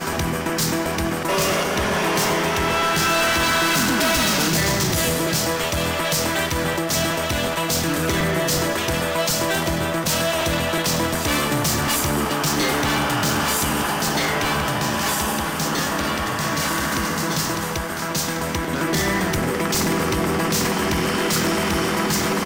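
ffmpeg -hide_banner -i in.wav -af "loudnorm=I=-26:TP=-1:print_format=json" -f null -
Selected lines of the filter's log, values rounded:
"input_i" : "-20.4",
"input_tp" : "-12.5",
"input_lra" : "3.5",
"input_thresh" : "-30.4",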